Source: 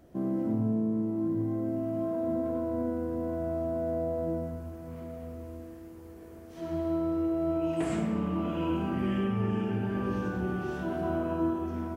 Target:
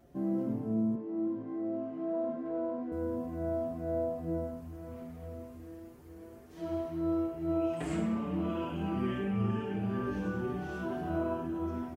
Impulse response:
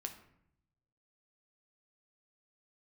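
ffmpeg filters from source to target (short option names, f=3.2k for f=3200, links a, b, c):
-filter_complex "[0:a]asettb=1/sr,asplit=3[a][b][c];[a]atrim=end=0.954[d];[b]atrim=start=0.95:end=2.92,asetpts=PTS-STARTPTS,afade=t=in:d=0.004:c=qsin,afade=t=out:st=1.966:d=0.004:c=qsin,highpass=250,lowpass=3.3k[e];[c]atrim=start=2.916[f];[d][e]acrossfade=d=0.004:c1=hsin:c2=qsin[g];[g][f]acrossfade=d=0.004:c1=qsin:c2=hsin,asplit=2[h][i];[i]adelay=5.4,afreqshift=2.2[j];[h][j]amix=inputs=2:normalize=1"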